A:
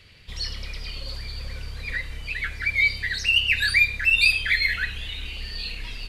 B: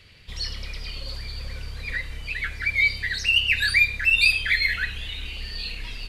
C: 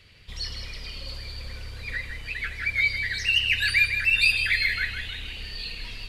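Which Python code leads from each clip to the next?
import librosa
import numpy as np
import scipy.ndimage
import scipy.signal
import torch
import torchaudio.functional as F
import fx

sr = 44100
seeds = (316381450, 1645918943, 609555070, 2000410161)

y1 = x
y2 = fx.echo_feedback(y1, sr, ms=158, feedback_pct=42, wet_db=-8.0)
y2 = y2 * 10.0 ** (-2.5 / 20.0)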